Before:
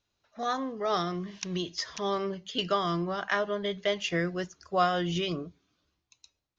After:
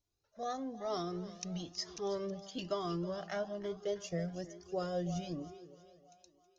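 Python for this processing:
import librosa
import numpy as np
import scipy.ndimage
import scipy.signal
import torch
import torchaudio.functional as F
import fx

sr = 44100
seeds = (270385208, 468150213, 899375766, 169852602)

y = fx.band_shelf(x, sr, hz=1900.0, db=fx.steps((0.0, -9.0), (3.49, -15.5), (5.35, -9.0)), octaves=2.3)
y = fx.echo_thinned(y, sr, ms=321, feedback_pct=53, hz=200.0, wet_db=-15)
y = fx.comb_cascade(y, sr, direction='rising', hz=1.1)
y = y * 10.0 ** (-1.0 / 20.0)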